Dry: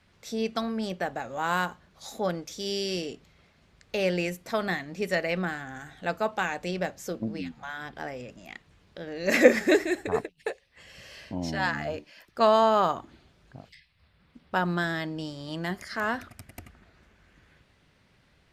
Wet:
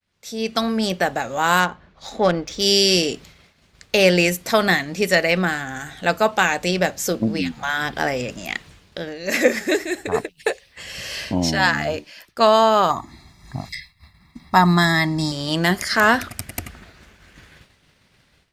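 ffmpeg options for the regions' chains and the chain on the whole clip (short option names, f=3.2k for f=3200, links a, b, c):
-filter_complex "[0:a]asettb=1/sr,asplit=3[a][b][c];[a]atrim=end=1.604[d];[b]atrim=start=1.6:end=2.62,asetpts=PTS-STARTPTS,afade=t=in:d=0.004:c=qsin,afade=t=out:st=1.016:d=0.004:c=qsin,asubboost=boost=9:cutoff=60,adynamicsmooth=sensitivity=3.5:basefreq=2.7k[e];[c]atrim=start=2.616[f];[d][e]acrossfade=d=0.004:c1=hsin:c2=qsin[g];[g][f]acrossfade=d=0.004:c1=qsin:c2=hsin,asettb=1/sr,asplit=3[h][i][j];[h]atrim=end=12.904[k];[i]atrim=start=12.9:end=15.32,asetpts=PTS-STARTPTS,afade=t=in:d=0.004:c=qsin,afade=t=out:st=2.416:d=0.004:c=qsin,asuperstop=centerf=3000:order=12:qfactor=5.8,aecho=1:1:1:0.84,atrim=end_sample=106722[l];[j]atrim=start=15.316[m];[k][l]acrossfade=d=0.004:c1=hsin:c2=qsin[n];[n][m]acrossfade=d=0.004:c1=qsin:c2=hsin,agate=range=-33dB:threshold=-54dB:ratio=3:detection=peak,highshelf=f=2.9k:g=8,dynaudnorm=f=340:g=3:m=16dB,volume=-1dB"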